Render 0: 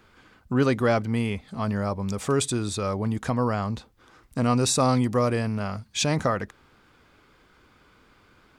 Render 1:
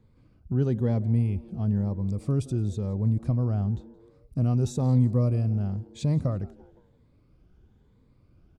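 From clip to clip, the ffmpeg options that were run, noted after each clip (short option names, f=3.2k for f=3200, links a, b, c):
-filter_complex "[0:a]afftfilt=real='re*pow(10,7/40*sin(2*PI*(0.99*log(max(b,1)*sr/1024/100)/log(2)-(1)*(pts-256)/sr)))':imag='im*pow(10,7/40*sin(2*PI*(0.99*log(max(b,1)*sr/1024/100)/log(2)-(1)*(pts-256)/sr)))':win_size=1024:overlap=0.75,firequalizer=gain_entry='entry(120,0);entry(280,-10);entry(1300,-27);entry(3800,-23)':delay=0.05:min_phase=1,asplit=4[a][b][c][d];[b]adelay=171,afreqshift=120,volume=-23dB[e];[c]adelay=342,afreqshift=240,volume=-30.5dB[f];[d]adelay=513,afreqshift=360,volume=-38.1dB[g];[a][e][f][g]amix=inputs=4:normalize=0,volume=4.5dB"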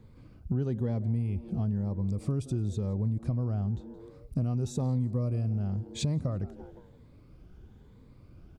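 -af "acompressor=threshold=-35dB:ratio=4,volume=6.5dB"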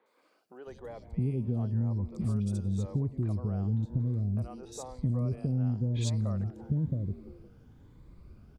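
-filter_complex "[0:a]acrossover=split=470|3100[a][b][c];[c]adelay=60[d];[a]adelay=670[e];[e][b][d]amix=inputs=3:normalize=0"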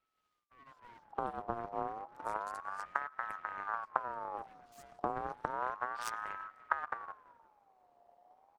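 -af "aeval=exprs='0.126*(cos(1*acos(clip(val(0)/0.126,-1,1)))-cos(1*PI/2))+0.0501*(cos(3*acos(clip(val(0)/0.126,-1,1)))-cos(3*PI/2))+0.00355*(cos(4*acos(clip(val(0)/0.126,-1,1)))-cos(4*PI/2))+0.00282*(cos(6*acos(clip(val(0)/0.126,-1,1)))-cos(6*PI/2))+0.00316*(cos(8*acos(clip(val(0)/0.126,-1,1)))-cos(8*PI/2))':c=same,aeval=exprs='abs(val(0))':c=same,aeval=exprs='val(0)*sin(2*PI*1000*n/s+1000*0.3/0.31*sin(2*PI*0.31*n/s))':c=same,volume=4dB"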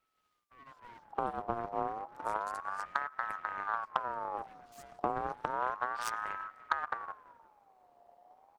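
-af "asoftclip=type=tanh:threshold=-17.5dB,volume=3.5dB"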